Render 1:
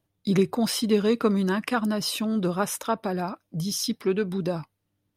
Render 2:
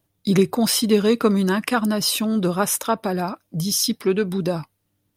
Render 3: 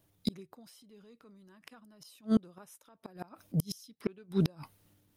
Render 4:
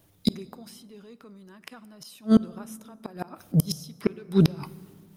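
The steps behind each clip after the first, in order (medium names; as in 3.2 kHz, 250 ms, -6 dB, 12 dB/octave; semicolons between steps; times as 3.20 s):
treble shelf 6.7 kHz +7.5 dB; trim +4.5 dB
inverted gate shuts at -14 dBFS, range -39 dB; transient shaper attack -4 dB, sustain +6 dB
plate-style reverb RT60 2.1 s, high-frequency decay 0.5×, DRR 17.5 dB; trim +9 dB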